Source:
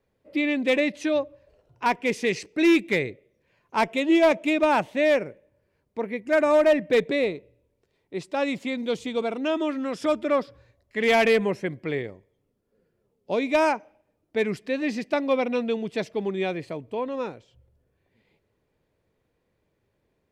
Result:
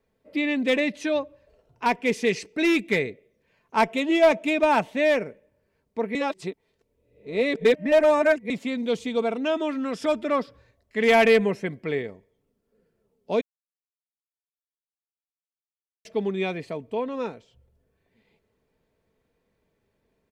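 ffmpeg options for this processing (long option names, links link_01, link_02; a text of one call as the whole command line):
ffmpeg -i in.wav -filter_complex "[0:a]asplit=5[link_01][link_02][link_03][link_04][link_05];[link_01]atrim=end=6.152[link_06];[link_02]atrim=start=6.148:end=8.502,asetpts=PTS-STARTPTS,areverse[link_07];[link_03]atrim=start=8.498:end=13.41,asetpts=PTS-STARTPTS,afade=type=out:start_time=4.908:duration=0.004:curve=hsin[link_08];[link_04]atrim=start=13.41:end=16.05,asetpts=PTS-STARTPTS,volume=0[link_09];[link_05]atrim=start=16.05,asetpts=PTS-STARTPTS,afade=type=in:duration=0.004:curve=hsin[link_10];[link_06][link_07]acrossfade=duration=0.004:curve1=hsin:curve2=hsin[link_11];[link_08][link_09][link_10]concat=n=3:v=0:a=1[link_12];[link_11][link_12]acrossfade=duration=0.004:curve1=hsin:curve2=hsin,aecho=1:1:4.5:0.34" out.wav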